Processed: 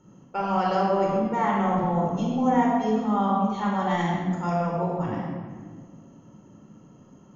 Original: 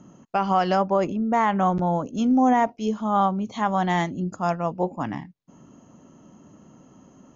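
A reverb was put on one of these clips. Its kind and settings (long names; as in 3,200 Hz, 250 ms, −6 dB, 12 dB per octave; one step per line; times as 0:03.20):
rectangular room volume 2,000 cubic metres, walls mixed, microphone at 4.4 metres
level −9.5 dB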